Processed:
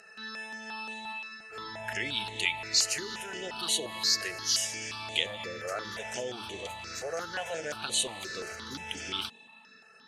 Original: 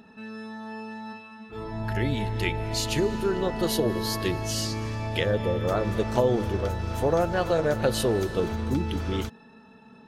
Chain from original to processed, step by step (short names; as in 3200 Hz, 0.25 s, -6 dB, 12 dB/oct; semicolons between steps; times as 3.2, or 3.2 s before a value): in parallel at +1 dB: limiter -22 dBFS, peak gain reduction 11 dB; on the sum: vocal rider within 4 dB 2 s; weighting filter ITU-R 468; step phaser 5.7 Hz 950–5100 Hz; gain -7.5 dB